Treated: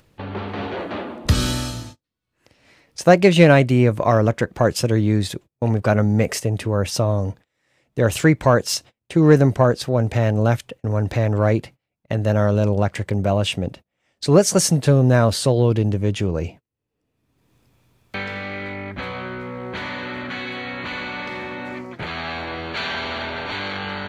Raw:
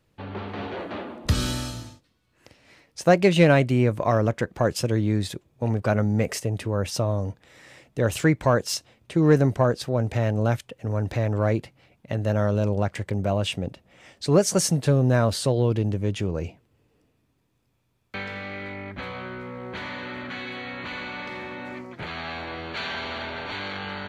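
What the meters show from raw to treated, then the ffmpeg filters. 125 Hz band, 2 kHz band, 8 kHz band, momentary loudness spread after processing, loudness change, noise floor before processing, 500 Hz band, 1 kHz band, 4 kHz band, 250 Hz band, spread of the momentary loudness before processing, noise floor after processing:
+5.0 dB, +5.0 dB, +5.0 dB, 15 LU, +5.0 dB, -69 dBFS, +5.0 dB, +5.0 dB, +5.0 dB, +5.0 dB, 15 LU, -80 dBFS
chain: -af "agate=range=-30dB:threshold=-42dB:ratio=16:detection=peak,acompressor=mode=upward:threshold=-37dB:ratio=2.5,volume=5dB"

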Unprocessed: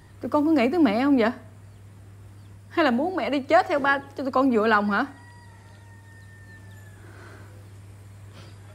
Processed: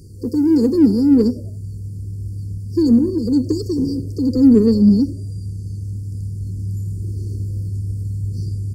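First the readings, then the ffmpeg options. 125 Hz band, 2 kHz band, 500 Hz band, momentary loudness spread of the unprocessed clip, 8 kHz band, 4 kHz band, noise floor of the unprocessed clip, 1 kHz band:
+18.5 dB, under -25 dB, +1.5 dB, 7 LU, n/a, -1.5 dB, -48 dBFS, under -20 dB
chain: -filter_complex "[0:a]afftfilt=real='re*(1-between(b*sr/4096,510,4300))':imag='im*(1-between(b*sr/4096,510,4300))':win_size=4096:overlap=0.75,asplit=4[a][b][c][d];[b]adelay=93,afreqshift=66,volume=-23dB[e];[c]adelay=186,afreqshift=132,volume=-30.1dB[f];[d]adelay=279,afreqshift=198,volume=-37.3dB[g];[a][e][f][g]amix=inputs=4:normalize=0,asplit=2[h][i];[i]asoftclip=type=tanh:threshold=-28dB,volume=-10dB[j];[h][j]amix=inputs=2:normalize=0,asubboost=boost=5:cutoff=220,volume=6.5dB"

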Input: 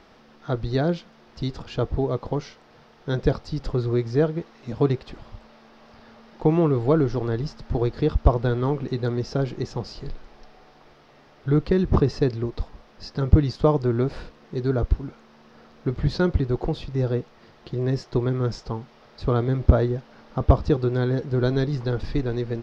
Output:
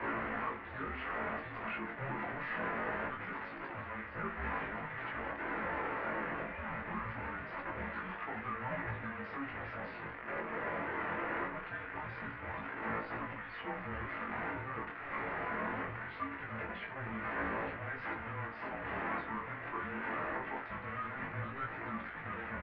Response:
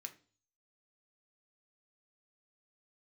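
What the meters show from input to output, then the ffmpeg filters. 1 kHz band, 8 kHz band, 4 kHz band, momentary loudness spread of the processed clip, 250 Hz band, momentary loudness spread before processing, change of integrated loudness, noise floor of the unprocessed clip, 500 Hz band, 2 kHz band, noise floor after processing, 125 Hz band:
-4.0 dB, n/a, -15.5 dB, 5 LU, -18.5 dB, 13 LU, -15.0 dB, -53 dBFS, -18.5 dB, +3.5 dB, -46 dBFS, -24.0 dB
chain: -filter_complex "[0:a]aeval=exprs='val(0)+0.5*0.0447*sgn(val(0))':c=same,acrossover=split=1400[a][b];[a]acompressor=threshold=-31dB:ratio=10[c];[c][b]amix=inputs=2:normalize=0,alimiter=level_in=2.5dB:limit=-24dB:level=0:latency=1:release=255,volume=-2.5dB,aresample=16000,asoftclip=type=tanh:threshold=-37dB,aresample=44100,flanger=delay=1.6:depth=7.8:regen=64:speed=0.55:shape=sinusoidal,acrusher=bits=2:mode=log:mix=0:aa=0.000001,flanger=delay=18:depth=7.2:speed=0.23,asplit=2[d][e];[e]adelay=18,volume=-13dB[f];[d][f]amix=inputs=2:normalize=0[g];[1:a]atrim=start_sample=2205,asetrate=38808,aresample=44100[h];[g][h]afir=irnorm=-1:irlink=0,highpass=f=430:t=q:w=0.5412,highpass=f=430:t=q:w=1.307,lowpass=f=2.5k:t=q:w=0.5176,lowpass=f=2.5k:t=q:w=0.7071,lowpass=f=2.5k:t=q:w=1.932,afreqshift=-270,volume=17dB"

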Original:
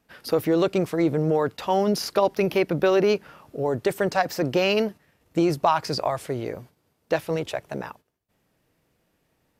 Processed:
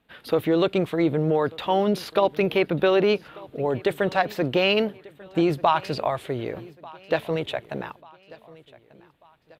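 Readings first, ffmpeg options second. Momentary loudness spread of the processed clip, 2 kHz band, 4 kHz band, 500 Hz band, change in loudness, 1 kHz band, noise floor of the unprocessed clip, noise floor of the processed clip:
12 LU, +2.0 dB, +2.0 dB, 0.0 dB, 0.0 dB, +0.5 dB, -71 dBFS, -58 dBFS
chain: -af "highshelf=f=4.4k:t=q:w=3:g=-6.5,aecho=1:1:1191|2382|3573:0.0794|0.0357|0.0161"

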